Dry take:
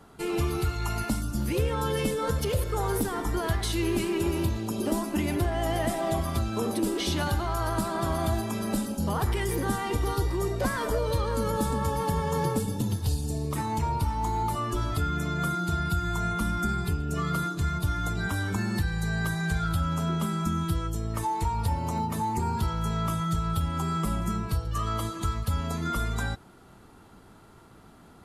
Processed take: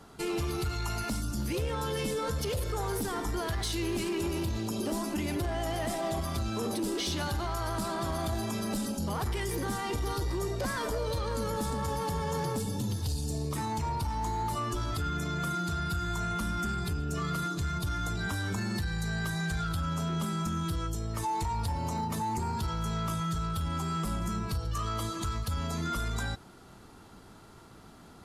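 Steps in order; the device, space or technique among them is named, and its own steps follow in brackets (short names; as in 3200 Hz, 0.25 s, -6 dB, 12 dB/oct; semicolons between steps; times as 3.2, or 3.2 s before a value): bell 5300 Hz +5.5 dB 1.2 oct; soft clipper into limiter (soft clip -20 dBFS, distortion -20 dB; limiter -25.5 dBFS, peak gain reduction 5 dB)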